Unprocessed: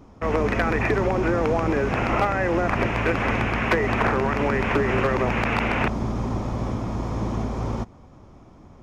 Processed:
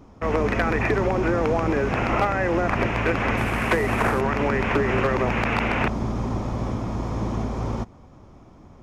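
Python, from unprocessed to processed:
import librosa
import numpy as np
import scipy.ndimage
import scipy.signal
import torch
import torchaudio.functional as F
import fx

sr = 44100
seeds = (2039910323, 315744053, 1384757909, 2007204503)

y = fx.cvsd(x, sr, bps=64000, at=(3.37, 4.21))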